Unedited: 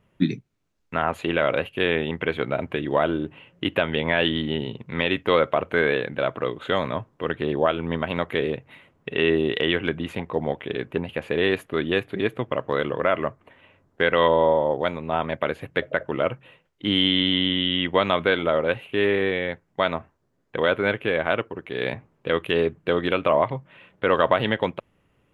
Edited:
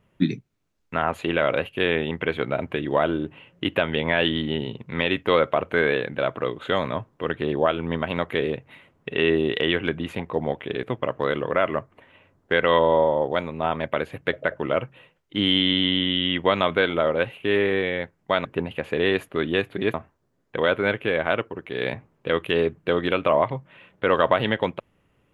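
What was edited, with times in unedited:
10.83–12.32 s: move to 19.94 s

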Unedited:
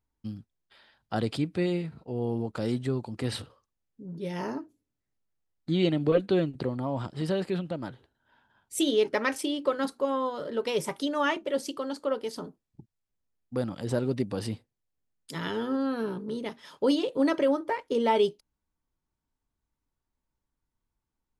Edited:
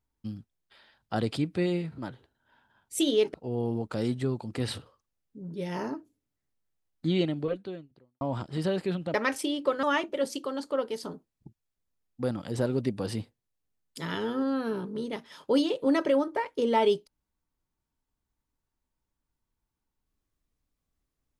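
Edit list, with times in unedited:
5.74–6.85 s: fade out quadratic
7.78–9.14 s: move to 1.98 s
9.83–11.16 s: delete

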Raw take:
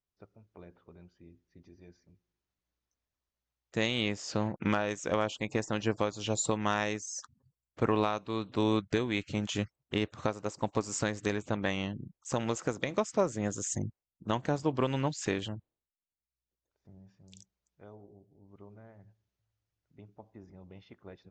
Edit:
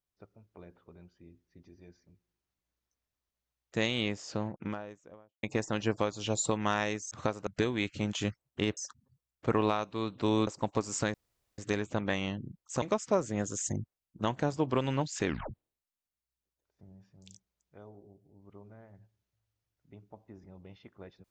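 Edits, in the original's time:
3.82–5.43 s: studio fade out
7.11–8.81 s: swap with 10.11–10.47 s
11.14 s: insert room tone 0.44 s
12.38–12.88 s: delete
15.32 s: tape stop 0.25 s

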